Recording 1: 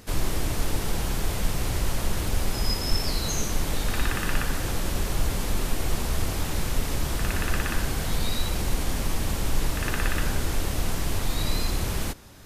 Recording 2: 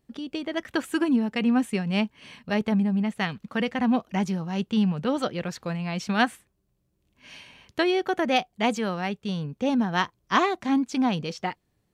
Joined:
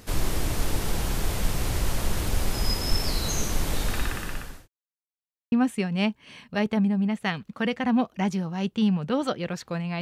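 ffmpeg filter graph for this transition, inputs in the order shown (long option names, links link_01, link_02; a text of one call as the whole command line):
ffmpeg -i cue0.wav -i cue1.wav -filter_complex "[0:a]apad=whole_dur=10.01,atrim=end=10.01,asplit=2[link_01][link_02];[link_01]atrim=end=4.68,asetpts=PTS-STARTPTS,afade=type=out:start_time=3.83:duration=0.85[link_03];[link_02]atrim=start=4.68:end=5.52,asetpts=PTS-STARTPTS,volume=0[link_04];[1:a]atrim=start=1.47:end=5.96,asetpts=PTS-STARTPTS,afade=type=in:duration=0.004:curve=hsin[link_05];[link_03][link_04][link_05]concat=n=3:v=0:a=1" out.wav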